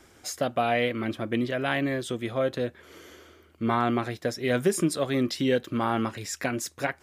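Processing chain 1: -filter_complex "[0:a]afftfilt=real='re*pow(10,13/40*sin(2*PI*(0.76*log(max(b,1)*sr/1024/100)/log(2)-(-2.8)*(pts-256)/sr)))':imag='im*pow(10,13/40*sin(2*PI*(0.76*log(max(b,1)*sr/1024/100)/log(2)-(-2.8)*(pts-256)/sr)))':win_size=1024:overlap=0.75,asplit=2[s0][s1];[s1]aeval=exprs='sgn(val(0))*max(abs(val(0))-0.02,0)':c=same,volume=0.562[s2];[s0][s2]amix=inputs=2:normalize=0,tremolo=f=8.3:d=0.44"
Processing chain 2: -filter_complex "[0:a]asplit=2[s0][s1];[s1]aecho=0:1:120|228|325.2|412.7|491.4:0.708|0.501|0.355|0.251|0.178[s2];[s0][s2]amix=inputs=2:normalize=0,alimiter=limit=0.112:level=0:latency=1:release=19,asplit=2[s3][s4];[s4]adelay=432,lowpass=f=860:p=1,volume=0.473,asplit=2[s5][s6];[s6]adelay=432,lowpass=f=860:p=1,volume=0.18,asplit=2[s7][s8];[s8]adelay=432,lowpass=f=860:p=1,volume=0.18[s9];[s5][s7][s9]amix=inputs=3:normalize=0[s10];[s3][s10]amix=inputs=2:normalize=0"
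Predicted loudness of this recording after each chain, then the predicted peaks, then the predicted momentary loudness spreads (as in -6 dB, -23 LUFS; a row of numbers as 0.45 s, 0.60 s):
-24.5 LUFS, -28.0 LUFS; -3.5 dBFS, -16.0 dBFS; 8 LU, 6 LU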